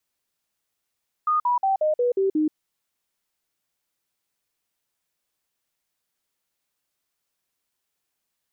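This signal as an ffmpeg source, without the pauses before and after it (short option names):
-f lavfi -i "aevalsrc='0.126*clip(min(mod(t,0.18),0.13-mod(t,0.18))/0.005,0,1)*sin(2*PI*1230*pow(2,-floor(t/0.18)/3)*mod(t,0.18))':d=1.26:s=44100"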